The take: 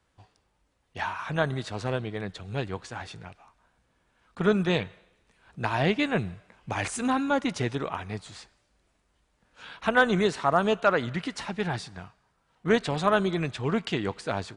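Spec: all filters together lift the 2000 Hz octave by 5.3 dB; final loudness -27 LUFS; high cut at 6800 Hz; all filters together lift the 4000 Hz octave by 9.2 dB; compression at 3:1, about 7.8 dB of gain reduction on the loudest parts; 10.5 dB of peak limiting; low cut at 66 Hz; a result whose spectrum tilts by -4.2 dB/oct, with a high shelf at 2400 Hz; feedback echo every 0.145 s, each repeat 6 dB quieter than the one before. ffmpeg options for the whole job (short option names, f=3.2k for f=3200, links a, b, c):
-af "highpass=66,lowpass=6.8k,equalizer=f=2k:t=o:g=4,highshelf=f=2.4k:g=4.5,equalizer=f=4k:t=o:g=6.5,acompressor=threshold=-23dB:ratio=3,alimiter=limit=-19.5dB:level=0:latency=1,aecho=1:1:145|290|435|580|725|870:0.501|0.251|0.125|0.0626|0.0313|0.0157,volume=4dB"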